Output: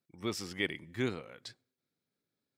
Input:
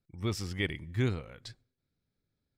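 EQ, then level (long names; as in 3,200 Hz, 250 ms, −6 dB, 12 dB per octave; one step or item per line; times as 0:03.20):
high-pass filter 220 Hz 12 dB per octave
0.0 dB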